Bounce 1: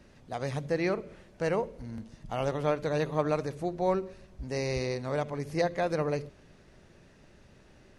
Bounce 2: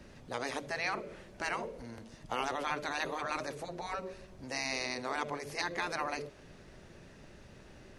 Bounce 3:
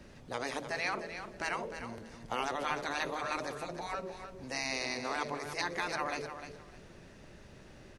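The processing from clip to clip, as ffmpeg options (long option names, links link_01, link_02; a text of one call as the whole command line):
ffmpeg -i in.wav -filter_complex "[0:a]afftfilt=real='re*lt(hypot(re,im),0.112)':imag='im*lt(hypot(re,im),0.112)':win_size=1024:overlap=0.75,acrossover=split=310[link_01][link_02];[link_01]acompressor=threshold=-54dB:ratio=6[link_03];[link_03][link_02]amix=inputs=2:normalize=0,volume=3.5dB" out.wav
ffmpeg -i in.wav -af "aecho=1:1:304|608|912:0.335|0.0703|0.0148" out.wav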